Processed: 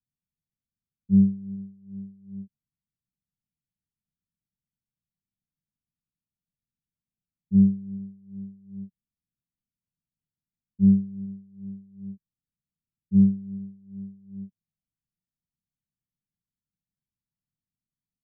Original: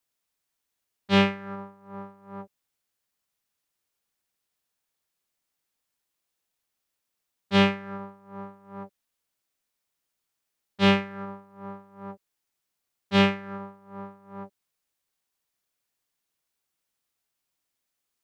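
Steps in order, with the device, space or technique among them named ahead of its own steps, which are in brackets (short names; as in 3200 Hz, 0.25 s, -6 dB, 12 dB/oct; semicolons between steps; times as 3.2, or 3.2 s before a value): the neighbour's flat through the wall (LPF 220 Hz 24 dB/oct; bell 160 Hz +6 dB 0.9 oct); gain +2.5 dB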